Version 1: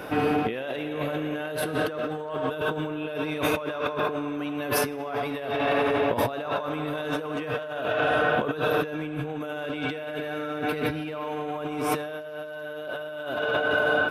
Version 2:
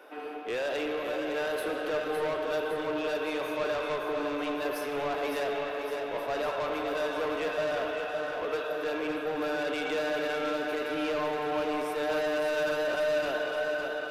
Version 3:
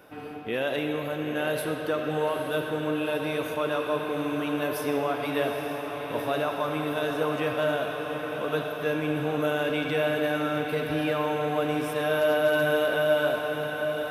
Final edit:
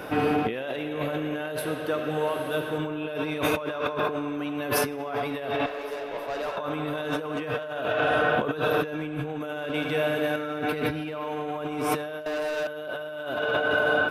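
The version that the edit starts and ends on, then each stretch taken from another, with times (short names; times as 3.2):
1
1.59–2.78 from 3
5.66–6.57 from 2
9.74–10.36 from 3
12.26–12.67 from 2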